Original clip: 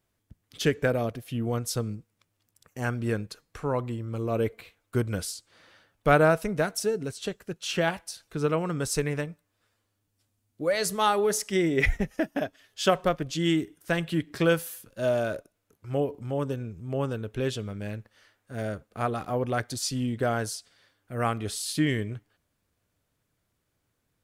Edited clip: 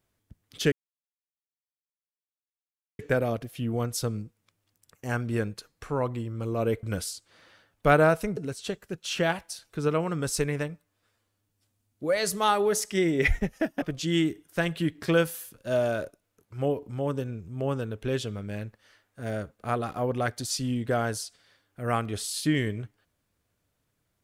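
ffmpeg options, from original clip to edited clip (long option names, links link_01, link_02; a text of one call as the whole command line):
ffmpeg -i in.wav -filter_complex "[0:a]asplit=5[link_01][link_02][link_03][link_04][link_05];[link_01]atrim=end=0.72,asetpts=PTS-STARTPTS,afade=type=out:start_time=0.716:duration=0.004:curve=hsin,apad=pad_dur=2.27[link_06];[link_02]atrim=start=0.72:end=4.562,asetpts=PTS-STARTPTS,afade=type=in:duration=0.004:curve=hsin[link_07];[link_03]atrim=start=5.038:end=6.582[link_08];[link_04]atrim=start=6.948:end=12.402[link_09];[link_05]atrim=start=13.138[link_10];[link_06][link_07]concat=n=2:v=0:a=1[link_11];[link_11][link_08]acrossfade=duration=0.004:curve1=hsin:curve2=hsin[link_12];[link_12][link_09]acrossfade=duration=0.004:curve1=hsin:curve2=hsin[link_13];[link_13][link_10]acrossfade=duration=0.004:curve1=hsin:curve2=hsin" out.wav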